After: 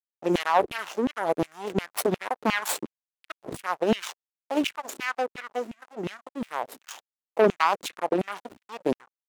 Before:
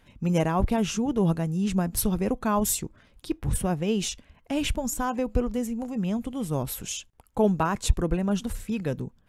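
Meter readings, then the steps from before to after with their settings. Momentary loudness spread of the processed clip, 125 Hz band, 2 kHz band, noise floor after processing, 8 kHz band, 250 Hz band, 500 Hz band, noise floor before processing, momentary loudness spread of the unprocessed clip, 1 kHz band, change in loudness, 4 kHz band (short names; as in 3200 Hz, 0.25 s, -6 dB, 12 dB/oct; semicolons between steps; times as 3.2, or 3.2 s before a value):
16 LU, -12.0 dB, +6.5 dB, under -85 dBFS, -6.5 dB, -5.5 dB, +2.0 dB, -60 dBFS, 8 LU, +4.0 dB, -1.0 dB, 0.0 dB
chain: backlash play -24 dBFS; added harmonics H 6 -9 dB, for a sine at -9 dBFS; LFO high-pass saw down 2.8 Hz 240–2900 Hz; gain -2.5 dB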